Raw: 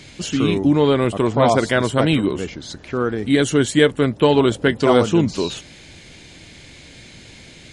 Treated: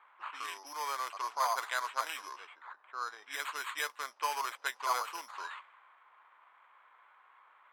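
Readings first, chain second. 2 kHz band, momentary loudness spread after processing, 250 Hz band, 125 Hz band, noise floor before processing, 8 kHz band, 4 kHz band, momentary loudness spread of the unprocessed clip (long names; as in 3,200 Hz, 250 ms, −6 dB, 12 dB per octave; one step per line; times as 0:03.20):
−13.0 dB, 13 LU, below −40 dB, below −40 dB, −43 dBFS, −12.5 dB, −16.5 dB, 10 LU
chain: sample-rate reduction 5,500 Hz, jitter 0%
low-pass that shuts in the quiet parts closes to 1,200 Hz, open at −12 dBFS
four-pole ladder high-pass 930 Hz, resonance 60%
level −5.5 dB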